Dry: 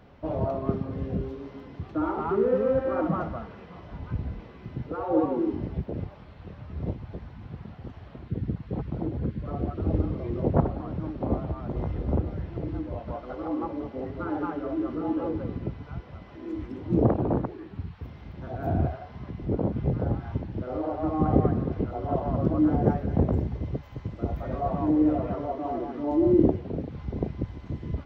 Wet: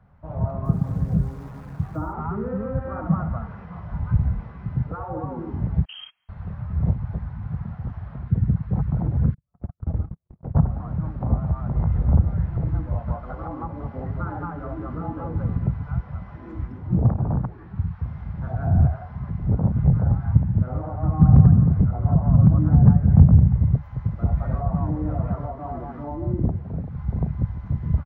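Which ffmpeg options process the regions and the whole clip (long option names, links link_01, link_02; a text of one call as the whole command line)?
ffmpeg -i in.wav -filter_complex "[0:a]asettb=1/sr,asplit=3[link_01][link_02][link_03];[link_01]atrim=end=0.654[link_04];[link_02]atrim=start=0.65:end=2.13,asetpts=PTS-STARTPTS,afade=type=in:duration=0.004:curve=qsin,afade=type=out:start_time=1.476:duration=0.004:curve=qsin,lowpass=1300,acrusher=bits=9:dc=4:mix=0:aa=0.000001,aecho=1:1:6.3:0.32,atrim=end_sample=65268[link_05];[link_03]atrim=start=2.126[link_06];[link_04][link_05]acrossfade=duration=0.004:curve1=hsin:curve2=qsin[link_07];[link_07][link_06]acrossfade=duration=0.004:curve1=qsin:curve2=hsin,asettb=1/sr,asplit=3[link_08][link_09][link_10];[link_08]atrim=end=5.854[link_11];[link_09]atrim=start=5.85:end=6.29,asetpts=PTS-STARTPTS,afade=type=in:duration=0.004:curve=qsin,afade=type=out:start_time=0.436:duration=0.004:curve=qsin,agate=range=-23dB:threshold=-40dB:ratio=16:release=100:detection=peak,lowpass=frequency=2800:width_type=q:width=0.5098,lowpass=frequency=2800:width_type=q:width=0.6013,lowpass=frequency=2800:width_type=q:width=0.9,lowpass=frequency=2800:width_type=q:width=2.563,afreqshift=-3300[link_12];[link_10]atrim=start=6.286[link_13];[link_11][link_12]acrossfade=duration=0.004:curve1=hsin:curve2=qsin[link_14];[link_14][link_13]acrossfade=duration=0.004:curve1=qsin:curve2=hsin,asettb=1/sr,asplit=3[link_15][link_16][link_17];[link_15]atrim=end=9.344[link_18];[link_16]atrim=start=9.34:end=10.55,asetpts=PTS-STARTPTS,afade=type=in:duration=0.004:curve=qsin,afade=type=out:start_time=1.206:duration=0.004:curve=qsin,agate=range=-59dB:threshold=-26dB:ratio=16:release=100:detection=peak,acompressor=threshold=-30dB:ratio=4:attack=3.2:release=140:knee=1:detection=peak[link_19];[link_17]atrim=start=10.546[link_20];[link_18][link_19]acrossfade=duration=0.004:curve1=hsin:curve2=qsin[link_21];[link_21][link_20]acrossfade=duration=0.004:curve1=qsin:curve2=hsin,asettb=1/sr,asplit=3[link_22][link_23][link_24];[link_22]atrim=end=20.244[link_25];[link_23]atrim=start=20.24:end=23.75,asetpts=PTS-STARTPTS,afade=type=in:duration=0.004:curve=qsin,afade=type=out:start_time=3.506:duration=0.004:curve=qsin,highpass=frequency=150:poles=1,bass=frequency=250:gain=12,treble=frequency=4000:gain=-5,asoftclip=type=hard:threshold=-10dB[link_26];[link_24]atrim=start=23.746[link_27];[link_25][link_26]acrossfade=duration=0.004:curve1=hsin:curve2=qsin[link_28];[link_28][link_27]acrossfade=duration=0.004:curve1=qsin:curve2=hsin,dynaudnorm=framelen=280:gausssize=3:maxgain=11.5dB,firequalizer=gain_entry='entry(160,0);entry(310,-18);entry(790,-6);entry(1400,-5);entry(2900,-19)':delay=0.05:min_phase=1,acrossover=split=280[link_29][link_30];[link_30]acompressor=threshold=-33dB:ratio=2.5[link_31];[link_29][link_31]amix=inputs=2:normalize=0" out.wav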